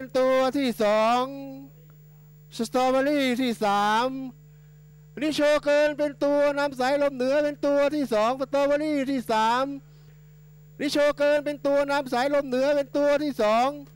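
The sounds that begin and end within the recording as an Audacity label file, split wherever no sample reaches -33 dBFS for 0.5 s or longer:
2.550000	4.290000	sound
5.170000	9.780000	sound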